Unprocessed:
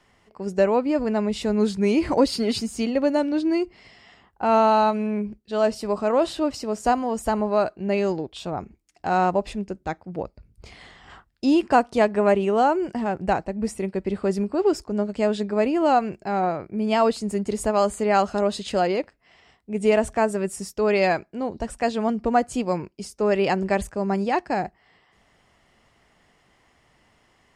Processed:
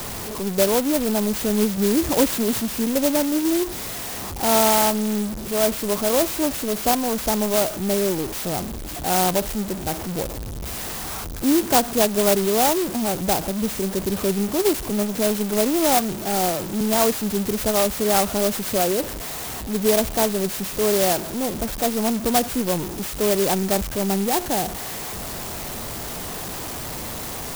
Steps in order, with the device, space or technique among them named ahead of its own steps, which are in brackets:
0:14.90–0:16.81: high-pass filter 140 Hz 24 dB per octave
early CD player with a faulty converter (converter with a step at zero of −24 dBFS; converter with an unsteady clock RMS 0.14 ms)
level −1 dB

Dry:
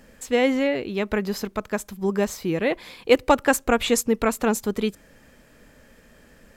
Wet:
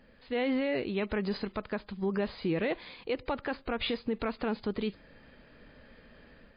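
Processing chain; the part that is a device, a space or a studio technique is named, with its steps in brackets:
low-bitrate web radio (automatic gain control gain up to 6 dB; brickwall limiter −13.5 dBFS, peak gain reduction 11.5 dB; level −8 dB; MP3 24 kbit/s 11,025 Hz)

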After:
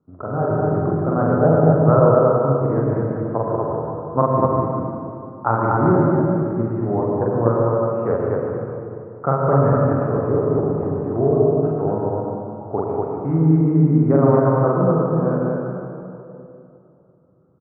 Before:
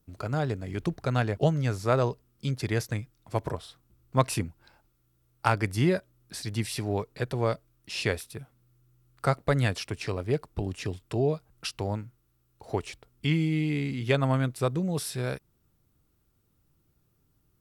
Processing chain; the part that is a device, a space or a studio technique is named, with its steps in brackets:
PA in a hall (high-pass filter 140 Hz 12 dB per octave; parametric band 3,100 Hz +5 dB 0.24 octaves; single-tap delay 147 ms −9 dB; convolution reverb RT60 2.7 s, pre-delay 76 ms, DRR 0 dB)
elliptic low-pass filter 1,300 Hz, stop band 60 dB
loudspeakers that aren't time-aligned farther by 15 metres −1 dB, 83 metres −2 dB
level +5.5 dB

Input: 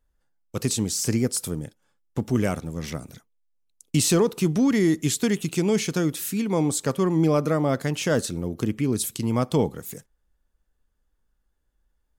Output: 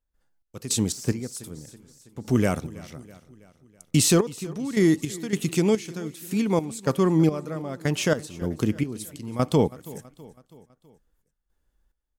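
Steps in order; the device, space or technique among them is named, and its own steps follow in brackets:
trance gate with a delay (gate pattern ".xx..xxx..." 107 BPM −12 dB; repeating echo 326 ms, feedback 54%, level −20 dB)
0:00.92–0:01.35: de-essing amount 75%
level +1.5 dB

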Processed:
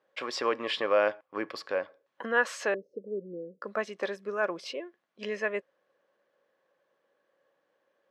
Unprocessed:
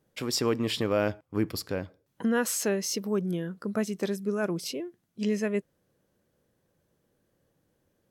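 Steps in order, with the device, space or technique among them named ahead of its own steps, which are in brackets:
0:02.74–0:03.62: elliptic low-pass filter 500 Hz, stop band 50 dB
tin-can telephone (band-pass filter 640–2,900 Hz; hollow resonant body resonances 550/1,100/1,700 Hz, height 8 dB, ringing for 50 ms)
level +4 dB

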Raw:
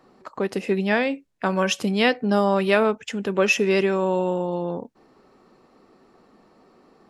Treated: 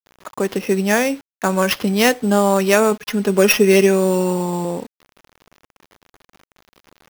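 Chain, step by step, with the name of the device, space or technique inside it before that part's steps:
early 8-bit sampler (sample-rate reduction 8,200 Hz, jitter 0%; bit reduction 8 bits)
0:02.91–0:04.65: comb filter 4.8 ms, depth 63%
level +4.5 dB

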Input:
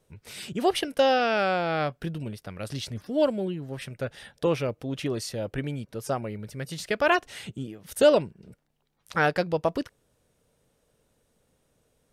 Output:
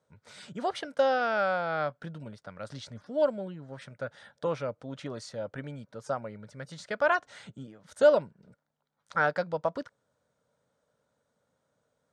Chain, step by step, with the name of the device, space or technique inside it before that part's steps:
car door speaker (loudspeaker in its box 110–7,700 Hz, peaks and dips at 360 Hz −8 dB, 580 Hz +6 dB, 950 Hz +5 dB, 1,400 Hz +8 dB, 2,700 Hz −8 dB, 5,300 Hz −3 dB)
level −7 dB

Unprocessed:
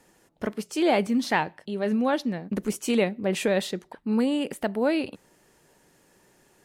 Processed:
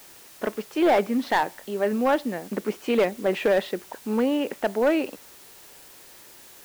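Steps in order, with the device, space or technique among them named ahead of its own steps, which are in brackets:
aircraft radio (band-pass filter 320–2,300 Hz; hard clipping −19.5 dBFS, distortion −15 dB; white noise bed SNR 23 dB)
level +5 dB

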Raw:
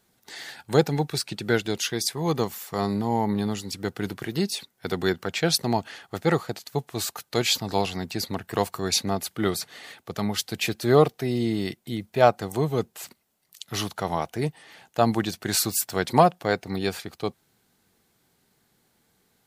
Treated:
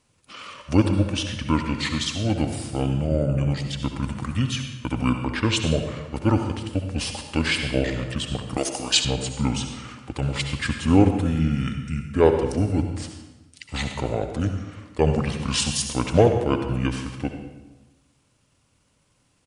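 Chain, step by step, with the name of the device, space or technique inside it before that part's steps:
monster voice (pitch shifter −7 semitones; low-shelf EQ 130 Hz +5 dB; convolution reverb RT60 1.1 s, pre-delay 59 ms, DRR 5.5 dB)
0:08.57–0:09.05: bass and treble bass −14 dB, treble +12 dB

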